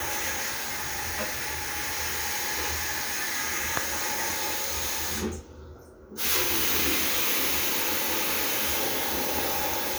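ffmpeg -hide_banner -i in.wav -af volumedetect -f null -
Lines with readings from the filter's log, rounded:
mean_volume: -28.5 dB
max_volume: -8.6 dB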